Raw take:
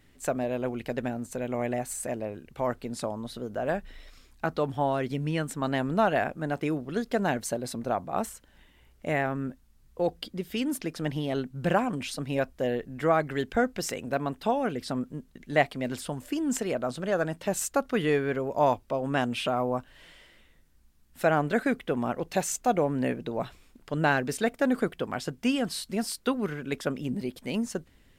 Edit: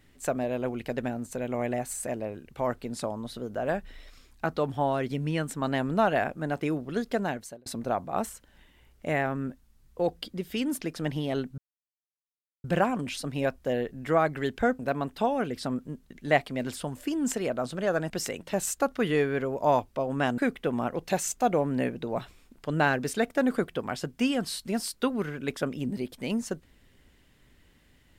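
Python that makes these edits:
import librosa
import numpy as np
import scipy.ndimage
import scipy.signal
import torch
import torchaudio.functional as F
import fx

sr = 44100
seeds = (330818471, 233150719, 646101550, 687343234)

y = fx.edit(x, sr, fx.fade_out_span(start_s=7.09, length_s=0.57),
    fx.insert_silence(at_s=11.58, length_s=1.06),
    fx.move(start_s=13.73, length_s=0.31, to_s=17.35),
    fx.cut(start_s=19.32, length_s=2.3), tone=tone)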